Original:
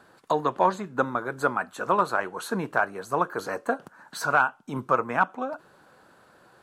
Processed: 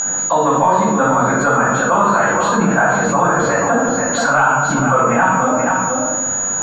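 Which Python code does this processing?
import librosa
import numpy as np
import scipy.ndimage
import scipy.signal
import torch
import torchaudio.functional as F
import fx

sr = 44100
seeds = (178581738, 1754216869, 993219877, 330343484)

y = fx.peak_eq(x, sr, hz=410.0, db=-8.5, octaves=0.31)
y = y + 10.0 ** (-10.5 / 20.0) * np.pad(y, (int(481 * sr / 1000.0), 0))[:len(y)]
y = fx.room_shoebox(y, sr, seeds[0], volume_m3=210.0, walls='mixed', distance_m=5.3)
y = y + 10.0 ** (-16.0 / 20.0) * np.sin(2.0 * np.pi * 6800.0 * np.arange(len(y)) / sr)
y = fx.air_absorb(y, sr, metres=170.0)
y = fx.env_flatten(y, sr, amount_pct=70)
y = y * librosa.db_to_amplitude(-6.5)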